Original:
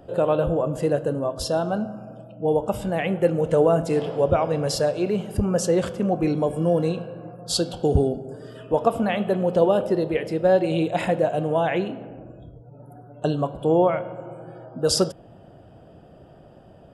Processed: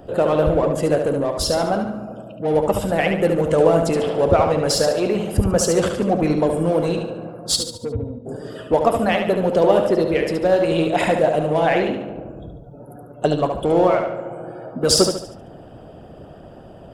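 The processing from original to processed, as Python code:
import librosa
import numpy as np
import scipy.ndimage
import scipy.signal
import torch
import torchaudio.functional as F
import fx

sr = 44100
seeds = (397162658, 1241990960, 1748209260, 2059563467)

p1 = fx.octave_resonator(x, sr, note='A#', decay_s=0.12, at=(7.55, 8.25), fade=0.02)
p2 = 10.0 ** (-30.0 / 20.0) * np.tanh(p1 / 10.0 ** (-30.0 / 20.0))
p3 = p1 + F.gain(torch.from_numpy(p2), -5.5).numpy()
p4 = fx.echo_feedback(p3, sr, ms=72, feedback_pct=43, wet_db=-5.0)
p5 = fx.hpss(p4, sr, part='percussive', gain_db=8)
y = F.gain(torch.from_numpy(p5), -1.5).numpy()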